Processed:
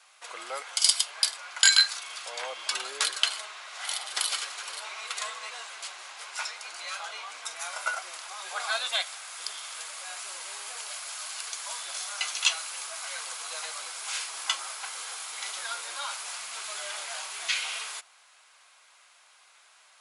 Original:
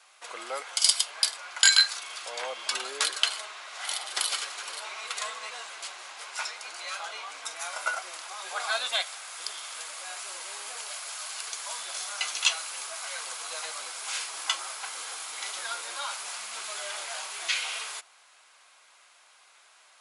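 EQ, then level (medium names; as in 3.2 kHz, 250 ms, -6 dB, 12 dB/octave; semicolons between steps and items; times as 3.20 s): bass shelf 370 Hz -8 dB; 0.0 dB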